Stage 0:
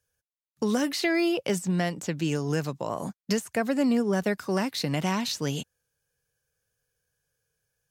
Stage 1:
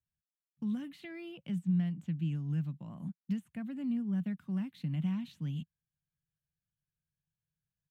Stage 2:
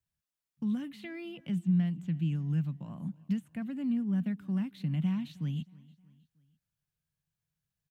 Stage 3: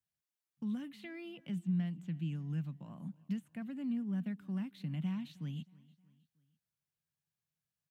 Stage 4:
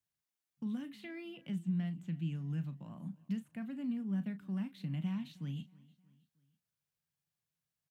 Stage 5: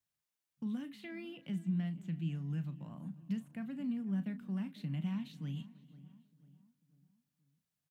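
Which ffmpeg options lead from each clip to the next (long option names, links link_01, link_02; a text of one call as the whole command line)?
ffmpeg -i in.wav -af "firequalizer=gain_entry='entry(120,0);entry(160,9);entry(430,-22);entry(700,-16);entry(3200,-8);entry(5000,-27);entry(8600,-20);entry(14000,-17)':delay=0.05:min_phase=1,volume=-9dB" out.wav
ffmpeg -i in.wav -af "aecho=1:1:314|628|942:0.075|0.0345|0.0159,volume=3dB" out.wav
ffmpeg -i in.wav -af "highpass=frequency=160:poles=1,volume=-4dB" out.wav
ffmpeg -i in.wav -filter_complex "[0:a]asplit=2[link_01][link_02];[link_02]adelay=36,volume=-12dB[link_03];[link_01][link_03]amix=inputs=2:normalize=0" out.wav
ffmpeg -i in.wav -filter_complex "[0:a]asplit=2[link_01][link_02];[link_02]adelay=495,lowpass=frequency=1500:poles=1,volume=-17dB,asplit=2[link_03][link_04];[link_04]adelay=495,lowpass=frequency=1500:poles=1,volume=0.47,asplit=2[link_05][link_06];[link_06]adelay=495,lowpass=frequency=1500:poles=1,volume=0.47,asplit=2[link_07][link_08];[link_08]adelay=495,lowpass=frequency=1500:poles=1,volume=0.47[link_09];[link_01][link_03][link_05][link_07][link_09]amix=inputs=5:normalize=0" out.wav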